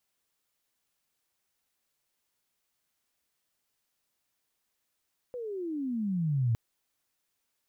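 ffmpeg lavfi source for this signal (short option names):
-f lavfi -i "aevalsrc='pow(10,(-23+12*(t/1.21-1))/20)*sin(2*PI*508*1.21/(-26.5*log(2)/12)*(exp(-26.5*log(2)/12*t/1.21)-1))':d=1.21:s=44100"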